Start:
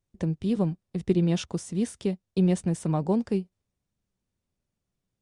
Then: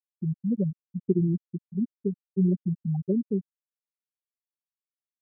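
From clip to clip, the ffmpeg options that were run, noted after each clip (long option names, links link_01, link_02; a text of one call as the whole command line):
ffmpeg -i in.wav -af "afftfilt=real='re*gte(hypot(re,im),0.355)':imag='im*gte(hypot(re,im),0.355)':win_size=1024:overlap=0.75" out.wav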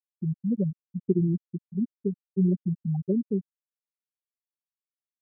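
ffmpeg -i in.wav -af anull out.wav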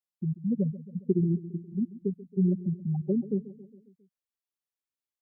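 ffmpeg -i in.wav -af "aecho=1:1:136|272|408|544|680:0.15|0.0868|0.0503|0.0292|0.0169,volume=-1.5dB" out.wav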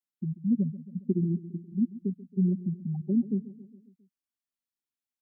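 ffmpeg -i in.wav -af "equalizer=frequency=125:width_type=o:width=1:gain=-4,equalizer=frequency=250:width_type=o:width=1:gain=10,equalizer=frequency=500:width_type=o:width=1:gain=-11,volume=-3dB" out.wav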